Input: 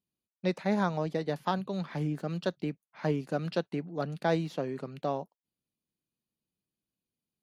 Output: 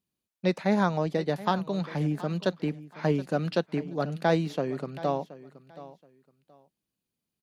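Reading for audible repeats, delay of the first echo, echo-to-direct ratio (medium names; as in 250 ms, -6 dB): 2, 725 ms, -17.0 dB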